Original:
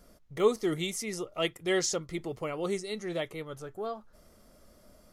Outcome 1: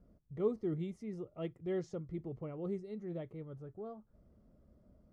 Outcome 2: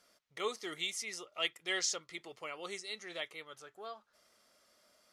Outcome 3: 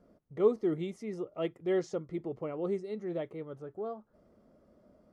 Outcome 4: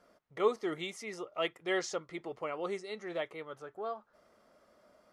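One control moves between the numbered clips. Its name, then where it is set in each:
band-pass filter, frequency: 100 Hz, 3.3 kHz, 300 Hz, 1.1 kHz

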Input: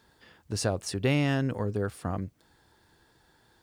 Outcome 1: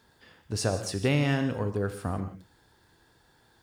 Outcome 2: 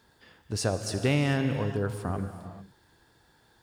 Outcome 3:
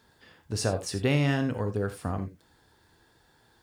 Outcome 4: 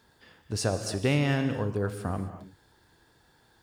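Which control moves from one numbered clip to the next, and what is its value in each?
gated-style reverb, gate: 200 ms, 470 ms, 110 ms, 290 ms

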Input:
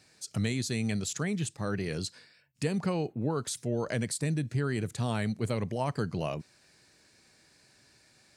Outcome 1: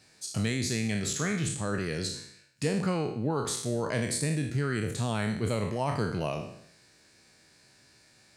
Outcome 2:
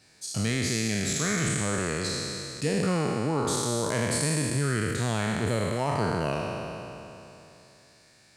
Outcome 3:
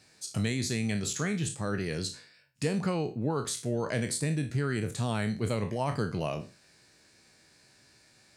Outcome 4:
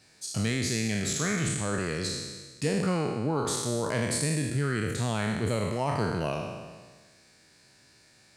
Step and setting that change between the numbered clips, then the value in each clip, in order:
spectral sustain, RT60: 0.68 s, 3 s, 0.33 s, 1.44 s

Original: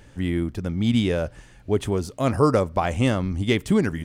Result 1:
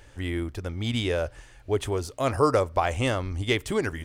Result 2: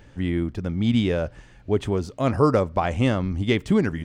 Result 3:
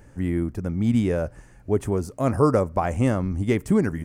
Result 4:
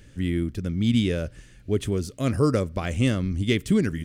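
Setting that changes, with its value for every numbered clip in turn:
peaking EQ, frequency: 190 Hz, 12 kHz, 3.5 kHz, 860 Hz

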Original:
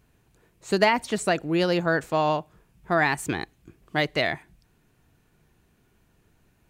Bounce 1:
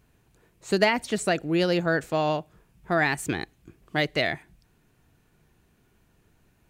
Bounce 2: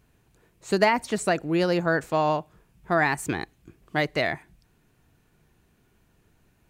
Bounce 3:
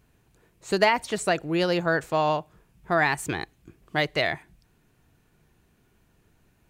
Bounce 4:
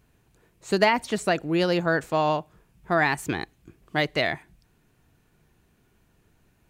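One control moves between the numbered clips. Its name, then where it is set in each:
dynamic bell, frequency: 1 kHz, 3.3 kHz, 240 Hz, 8.4 kHz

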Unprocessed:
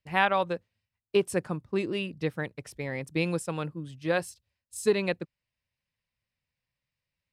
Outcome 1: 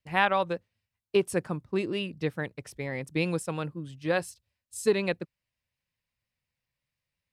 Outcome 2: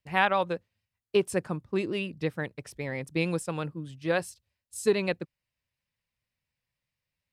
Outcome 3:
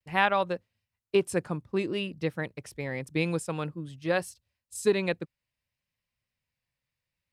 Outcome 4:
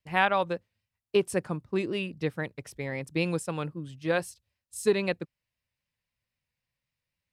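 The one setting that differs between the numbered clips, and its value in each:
vibrato, rate: 5.6 Hz, 8.9 Hz, 0.54 Hz, 3.8 Hz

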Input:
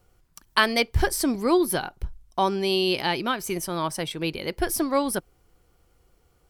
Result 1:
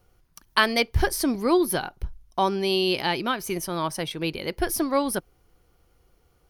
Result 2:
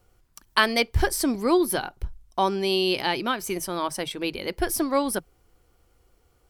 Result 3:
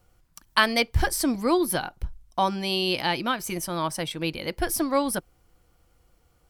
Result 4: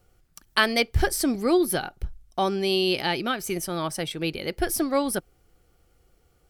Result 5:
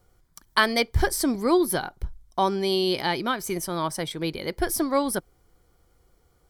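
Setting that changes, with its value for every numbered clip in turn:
band-stop, frequency: 7.7 kHz, 160 Hz, 400 Hz, 1 kHz, 2.7 kHz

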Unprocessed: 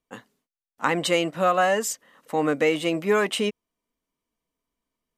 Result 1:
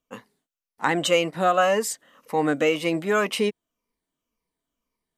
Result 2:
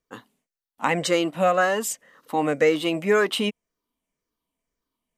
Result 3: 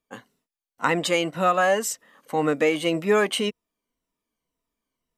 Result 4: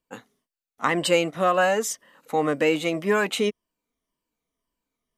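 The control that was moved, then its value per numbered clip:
drifting ripple filter, ripples per octave: 0.86, 0.55, 2, 1.3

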